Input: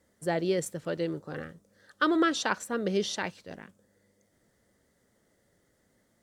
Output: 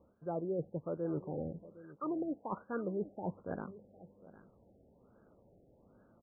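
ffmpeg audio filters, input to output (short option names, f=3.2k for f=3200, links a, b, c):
-filter_complex "[0:a]areverse,acompressor=threshold=-40dB:ratio=8,areverse,asplit=2[a][b];[b]adelay=758,volume=-17dB,highshelf=f=4k:g=-17.1[c];[a][c]amix=inputs=2:normalize=0,afftfilt=real='re*lt(b*sr/1024,800*pow(1700/800,0.5+0.5*sin(2*PI*1.2*pts/sr)))':imag='im*lt(b*sr/1024,800*pow(1700/800,0.5+0.5*sin(2*PI*1.2*pts/sr)))':win_size=1024:overlap=0.75,volume=6dB"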